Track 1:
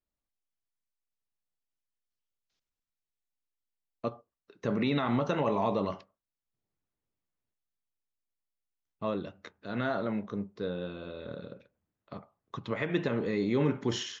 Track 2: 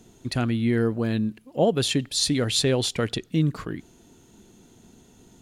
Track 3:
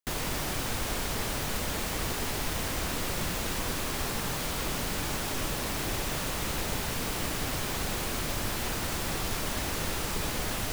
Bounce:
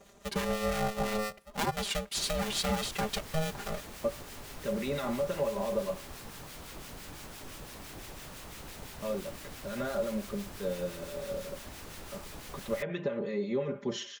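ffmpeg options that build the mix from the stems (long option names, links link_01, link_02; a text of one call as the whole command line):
ffmpeg -i stem1.wav -i stem2.wav -i stem3.wav -filter_complex "[0:a]equalizer=frequency=550:width_type=o:width=0.21:gain=13.5,volume=-4.5dB[link_01];[1:a]aeval=exprs='val(0)*sgn(sin(2*PI*320*n/s))':channel_layout=same,volume=-5dB[link_02];[2:a]adelay=2100,volume=-11.5dB[link_03];[link_01][link_02]amix=inputs=2:normalize=0,aecho=1:1:5:0.93,acompressor=threshold=-27dB:ratio=3,volume=0dB[link_04];[link_03][link_04]amix=inputs=2:normalize=0,acrossover=split=1300[link_05][link_06];[link_05]aeval=exprs='val(0)*(1-0.5/2+0.5/2*cos(2*PI*5.9*n/s))':channel_layout=same[link_07];[link_06]aeval=exprs='val(0)*(1-0.5/2-0.5/2*cos(2*PI*5.9*n/s))':channel_layout=same[link_08];[link_07][link_08]amix=inputs=2:normalize=0" out.wav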